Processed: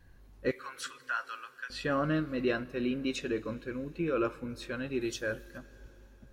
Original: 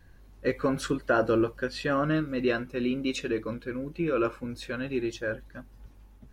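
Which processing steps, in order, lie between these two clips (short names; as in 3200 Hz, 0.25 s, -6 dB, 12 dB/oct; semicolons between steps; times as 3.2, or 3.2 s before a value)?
0.51–1.7 HPF 1200 Hz 24 dB/oct; 5.01–5.58 high shelf 3800 Hz +11.5 dB; plate-style reverb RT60 4.2 s, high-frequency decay 0.95×, DRR 19 dB; gain -3.5 dB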